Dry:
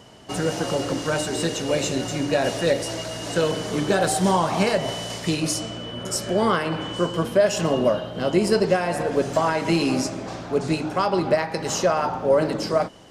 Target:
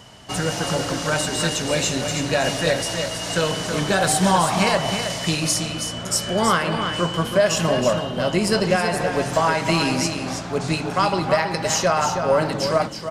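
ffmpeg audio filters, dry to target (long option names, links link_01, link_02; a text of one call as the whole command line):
ffmpeg -i in.wav -af "equalizer=frequency=370:width_type=o:width=1.6:gain=-8.5,aecho=1:1:323:0.422,volume=5dB" out.wav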